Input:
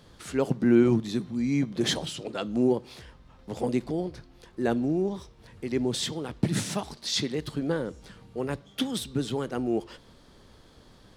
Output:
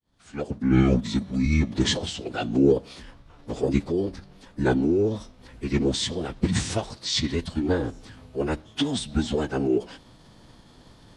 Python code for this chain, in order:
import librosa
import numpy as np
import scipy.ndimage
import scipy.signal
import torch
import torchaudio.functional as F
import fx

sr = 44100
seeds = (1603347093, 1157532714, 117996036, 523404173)

y = fx.fade_in_head(x, sr, length_s=1.22)
y = fx.pitch_keep_formants(y, sr, semitones=-10.5)
y = y * librosa.db_to_amplitude(5.0)